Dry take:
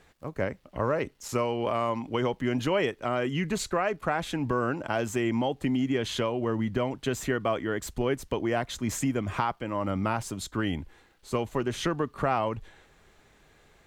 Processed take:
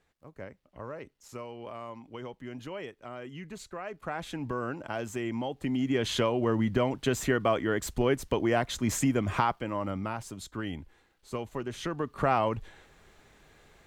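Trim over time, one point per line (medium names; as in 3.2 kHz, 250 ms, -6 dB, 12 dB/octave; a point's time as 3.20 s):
3.71 s -13.5 dB
4.22 s -6 dB
5.50 s -6 dB
6.09 s +1.5 dB
9.51 s +1.5 dB
10.08 s -6.5 dB
11.83 s -6.5 dB
12.29 s +1 dB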